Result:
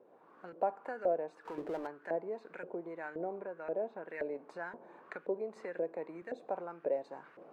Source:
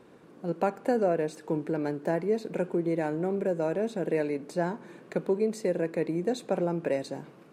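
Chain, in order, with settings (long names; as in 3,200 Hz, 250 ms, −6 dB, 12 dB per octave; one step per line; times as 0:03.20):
camcorder AGC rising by 19 dB per second
0:03.38–0:04.08: Bessel low-pass filter 3,300 Hz, order 2
auto-filter band-pass saw up 1.9 Hz 520–1,800 Hz
0:01.45–0:01.87: power curve on the samples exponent 0.7
0:05.56–0:06.22: multiband upward and downward compressor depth 40%
level −2 dB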